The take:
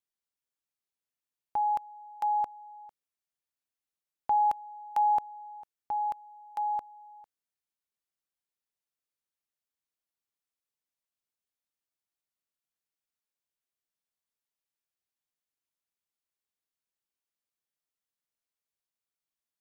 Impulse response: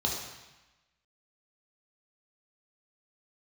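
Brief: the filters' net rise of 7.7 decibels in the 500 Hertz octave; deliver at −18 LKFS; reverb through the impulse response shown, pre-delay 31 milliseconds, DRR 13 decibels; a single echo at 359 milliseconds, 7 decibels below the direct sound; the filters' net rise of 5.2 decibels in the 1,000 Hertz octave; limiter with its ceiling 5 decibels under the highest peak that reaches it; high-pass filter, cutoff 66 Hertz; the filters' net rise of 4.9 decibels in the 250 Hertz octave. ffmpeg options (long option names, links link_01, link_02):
-filter_complex "[0:a]highpass=66,equalizer=frequency=250:width_type=o:gain=3,equalizer=frequency=500:width_type=o:gain=8.5,equalizer=frequency=1000:width_type=o:gain=3,alimiter=limit=-18.5dB:level=0:latency=1,aecho=1:1:359:0.447,asplit=2[link_01][link_02];[1:a]atrim=start_sample=2205,adelay=31[link_03];[link_02][link_03]afir=irnorm=-1:irlink=0,volume=-20.5dB[link_04];[link_01][link_04]amix=inputs=2:normalize=0,volume=8dB"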